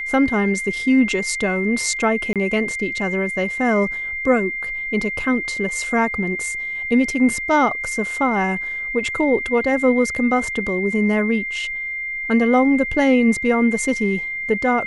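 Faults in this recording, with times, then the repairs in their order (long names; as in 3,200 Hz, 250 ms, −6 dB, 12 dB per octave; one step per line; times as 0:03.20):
whistle 2,100 Hz −24 dBFS
0:02.33–0:02.36: drop-out 27 ms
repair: notch filter 2,100 Hz, Q 30
repair the gap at 0:02.33, 27 ms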